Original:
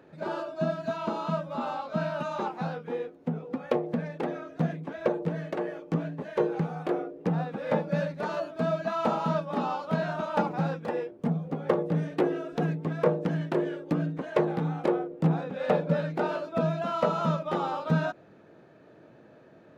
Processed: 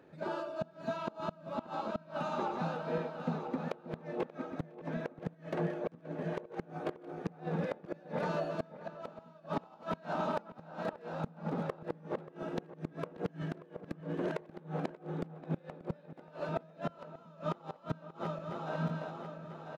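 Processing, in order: backward echo that repeats 497 ms, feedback 62%, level -6 dB; on a send: delay 207 ms -21.5 dB; on the sum: inverted gate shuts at -18 dBFS, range -26 dB; echo from a far wall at 100 m, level -15 dB; trim -4.5 dB

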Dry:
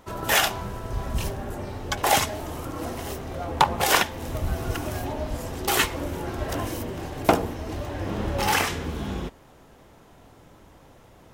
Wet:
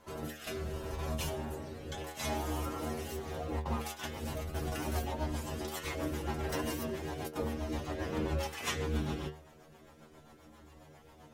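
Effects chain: compressor with a negative ratio -27 dBFS, ratio -0.5; bass shelf 90 Hz -7 dB; inharmonic resonator 75 Hz, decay 0.42 s, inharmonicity 0.002; rotary cabinet horn 0.7 Hz, later 7.5 Hz, at 2.96 s; 2.40–3.72 s: crackle 250 per s -61 dBFS; trim +5.5 dB

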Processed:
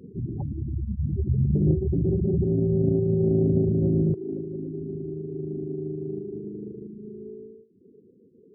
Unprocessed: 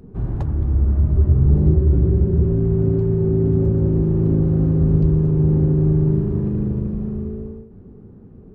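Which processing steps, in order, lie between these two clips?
spectral gate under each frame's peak -20 dB strong; high-pass 140 Hz 12 dB/octave, from 4.14 s 440 Hz; reverb removal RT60 0.55 s; loudspeaker Doppler distortion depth 0.22 ms

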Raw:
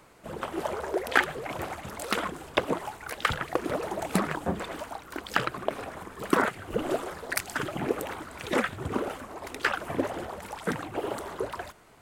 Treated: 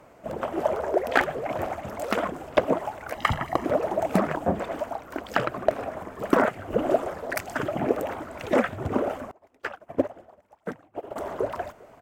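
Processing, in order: fifteen-band graphic EQ 100 Hz +4 dB, 250 Hz +5 dB, 630 Hz +10 dB, 4 kHz -7 dB, 10 kHz -9 dB; speakerphone echo 400 ms, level -24 dB; one-sided clip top -9 dBFS; 3.15–3.65 s: comb 1 ms, depth 68%; crackling interface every 0.45 s, samples 64, repeat, from 0.31 s; 9.31–11.16 s: upward expansion 2.5:1, over -38 dBFS

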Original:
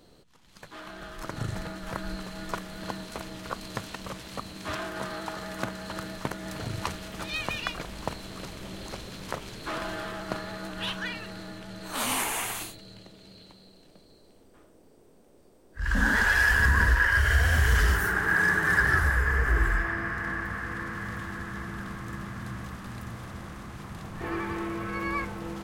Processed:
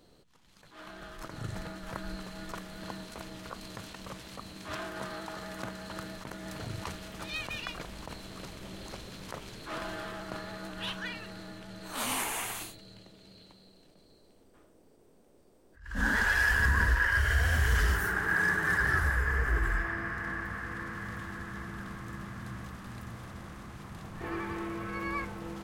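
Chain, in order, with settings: attacks held to a fixed rise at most 120 dB/s; trim -4 dB

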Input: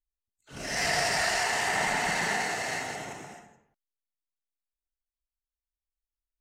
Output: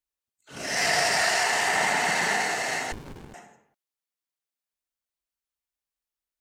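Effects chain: high-pass 220 Hz 6 dB/octave; 2.92–3.34 s: sliding maximum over 65 samples; trim +4 dB

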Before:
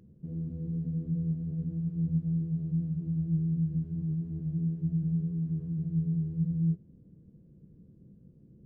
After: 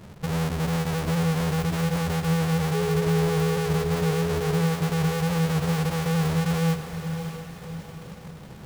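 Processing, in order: square wave that keeps the level; peak limiter -31 dBFS, peak gain reduction 10.5 dB; 2.73–4.61 s: whistle 420 Hz -33 dBFS; on a send: echo that smears into a reverb 614 ms, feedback 48%, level -9 dB; on the sum: trim +8 dB

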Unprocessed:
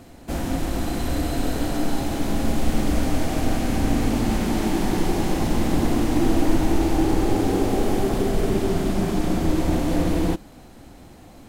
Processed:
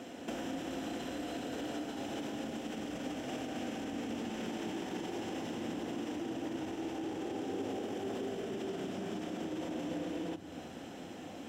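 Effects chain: bass shelf 120 Hz -7 dB; peak limiter -21.5 dBFS, peak gain reduction 11 dB; compression 6:1, threshold -37 dBFS, peak gain reduction 11 dB; bass shelf 60 Hz -8 dB; reverberation RT60 3.5 s, pre-delay 3 ms, DRR 14.5 dB; trim -4.5 dB

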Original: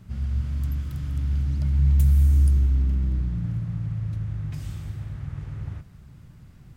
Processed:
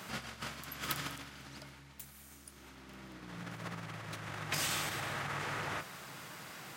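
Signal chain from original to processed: peak limiter -17.5 dBFS, peak gain reduction 7 dB; reverberation RT60 0.40 s, pre-delay 6 ms, DRR 15 dB; compressor with a negative ratio -32 dBFS, ratio -1; high-pass 660 Hz 12 dB/octave; trim +12 dB

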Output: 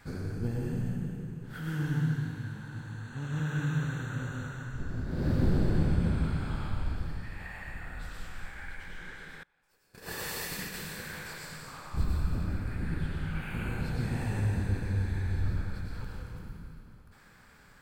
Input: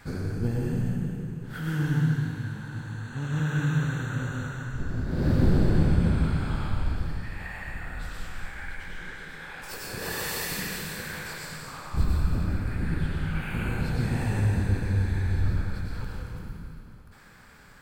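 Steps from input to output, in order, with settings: 9.43–10.74 s: gate -32 dBFS, range -28 dB; trim -5 dB

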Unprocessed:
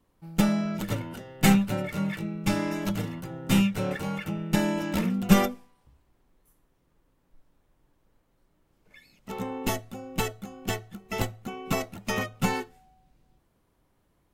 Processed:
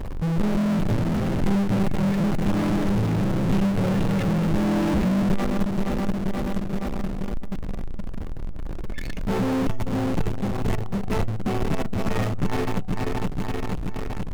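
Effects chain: backward echo that repeats 238 ms, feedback 63%, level -9 dB; tilt EQ -4 dB/octave; compression 2:1, threshold -37 dBFS, peak gain reduction 20.5 dB; power-law waveshaper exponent 0.35; trim -2 dB

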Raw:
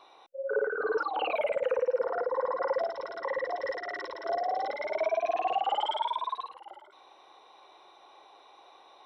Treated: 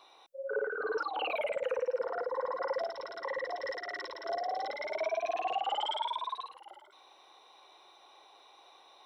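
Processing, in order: treble shelf 2.8 kHz +9.5 dB; trim -5 dB

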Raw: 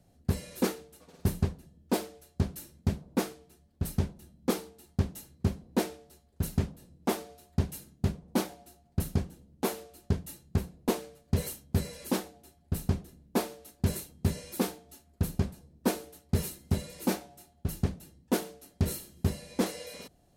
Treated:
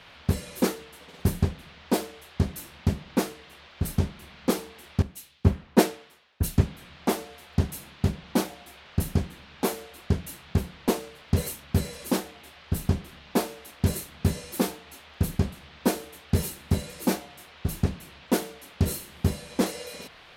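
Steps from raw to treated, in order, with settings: band noise 390–3800 Hz -55 dBFS; 5.02–6.61 s: three bands expanded up and down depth 100%; trim +4 dB

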